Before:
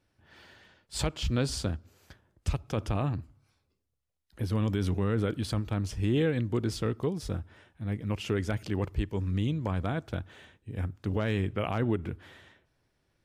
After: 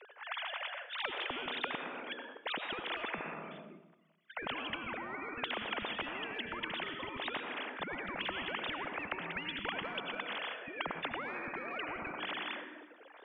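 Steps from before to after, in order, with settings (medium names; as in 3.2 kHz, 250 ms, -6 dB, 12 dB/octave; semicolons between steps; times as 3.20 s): formants replaced by sine waves; high-pass 250 Hz 24 dB/octave; in parallel at +1 dB: level held to a coarse grid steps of 12 dB; on the sum: peak limiter -21 dBFS, peak gain reduction 10 dB; compression, threshold -28 dBFS, peak gain reduction 5 dB; distance through air 82 m; on a send at -14 dB: reverberation RT60 1.0 s, pre-delay 73 ms; on the sum: spectrum-flattening compressor 10:1; trim +1 dB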